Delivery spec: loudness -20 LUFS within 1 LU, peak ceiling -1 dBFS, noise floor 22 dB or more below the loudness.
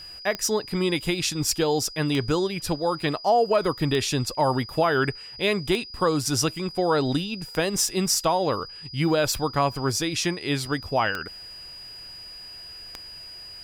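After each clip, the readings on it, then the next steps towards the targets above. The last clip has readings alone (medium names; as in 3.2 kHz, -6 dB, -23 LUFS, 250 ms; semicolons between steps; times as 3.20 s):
clicks found 8; steady tone 4.9 kHz; tone level -39 dBFS; loudness -24.5 LUFS; peak level -10.5 dBFS; loudness target -20.0 LUFS
-> de-click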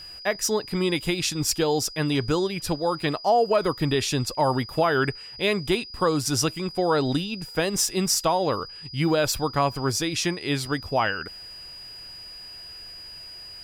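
clicks found 0; steady tone 4.9 kHz; tone level -39 dBFS
-> band-stop 4.9 kHz, Q 30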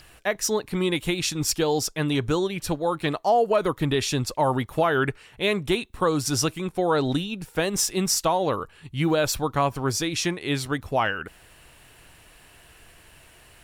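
steady tone not found; loudness -24.5 LUFS; peak level -11.0 dBFS; loudness target -20.0 LUFS
-> trim +4.5 dB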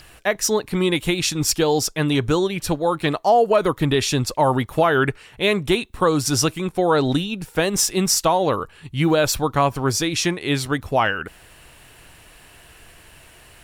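loudness -20.0 LUFS; peak level -6.5 dBFS; noise floor -48 dBFS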